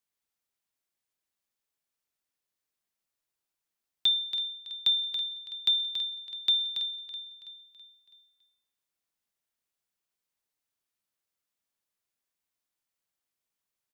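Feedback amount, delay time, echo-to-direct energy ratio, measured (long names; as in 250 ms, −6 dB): 48%, 328 ms, −11.5 dB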